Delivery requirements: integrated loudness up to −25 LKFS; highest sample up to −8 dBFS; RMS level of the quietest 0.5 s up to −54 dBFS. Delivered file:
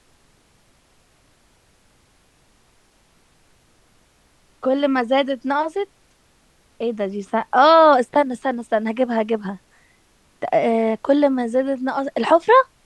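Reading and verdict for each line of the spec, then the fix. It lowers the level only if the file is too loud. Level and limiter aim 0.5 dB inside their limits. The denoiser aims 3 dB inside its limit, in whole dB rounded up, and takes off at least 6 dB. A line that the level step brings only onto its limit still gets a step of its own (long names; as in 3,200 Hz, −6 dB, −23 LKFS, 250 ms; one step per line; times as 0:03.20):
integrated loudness −19.0 LKFS: out of spec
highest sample −2.5 dBFS: out of spec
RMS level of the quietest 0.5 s −58 dBFS: in spec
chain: level −6.5 dB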